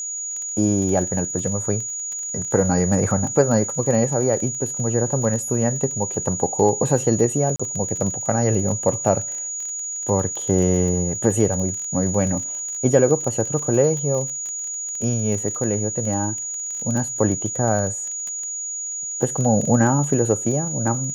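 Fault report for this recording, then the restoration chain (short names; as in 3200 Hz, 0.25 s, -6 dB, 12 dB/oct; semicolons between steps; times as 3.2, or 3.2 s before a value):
crackle 23/s -26 dBFS
tone 6800 Hz -26 dBFS
7.56–7.59 gap 35 ms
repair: de-click; notch 6800 Hz, Q 30; interpolate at 7.56, 35 ms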